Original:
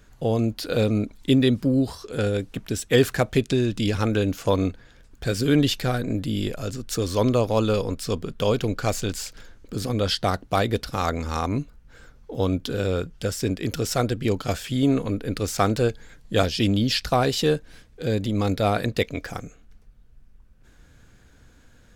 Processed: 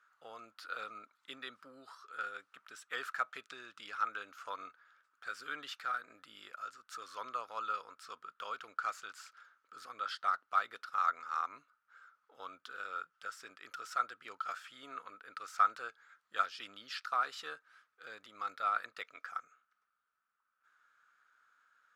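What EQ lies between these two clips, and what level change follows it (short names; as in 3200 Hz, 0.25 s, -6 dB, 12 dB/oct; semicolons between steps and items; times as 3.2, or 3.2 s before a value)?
band-pass 1300 Hz, Q 9.4; tilt +4 dB/oct; +1.0 dB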